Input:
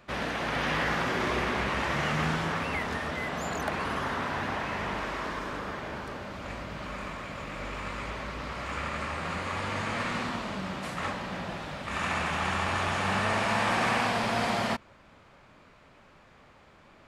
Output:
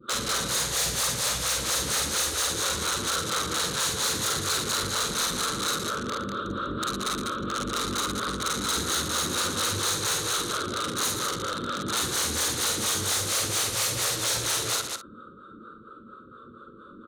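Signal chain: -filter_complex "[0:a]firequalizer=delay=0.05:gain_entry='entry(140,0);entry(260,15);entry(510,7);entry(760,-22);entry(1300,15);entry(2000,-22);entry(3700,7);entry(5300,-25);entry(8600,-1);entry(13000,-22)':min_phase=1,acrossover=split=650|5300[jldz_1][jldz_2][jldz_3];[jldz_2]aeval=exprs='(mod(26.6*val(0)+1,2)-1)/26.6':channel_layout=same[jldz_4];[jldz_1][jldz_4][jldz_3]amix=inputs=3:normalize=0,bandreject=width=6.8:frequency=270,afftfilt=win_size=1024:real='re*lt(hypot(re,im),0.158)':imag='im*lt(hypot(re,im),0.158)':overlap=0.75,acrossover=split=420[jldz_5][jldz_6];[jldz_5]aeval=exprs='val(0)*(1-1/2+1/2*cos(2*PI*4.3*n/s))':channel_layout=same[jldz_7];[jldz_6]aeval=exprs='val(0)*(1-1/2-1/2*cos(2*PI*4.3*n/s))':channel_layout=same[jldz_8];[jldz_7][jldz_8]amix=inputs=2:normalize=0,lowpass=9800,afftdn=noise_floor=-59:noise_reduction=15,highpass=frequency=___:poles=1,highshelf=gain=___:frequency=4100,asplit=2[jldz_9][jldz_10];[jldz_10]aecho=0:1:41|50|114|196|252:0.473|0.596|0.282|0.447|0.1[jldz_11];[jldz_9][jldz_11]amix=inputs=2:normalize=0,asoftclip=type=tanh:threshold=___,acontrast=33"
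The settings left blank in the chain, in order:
56, 10.5, -25.5dB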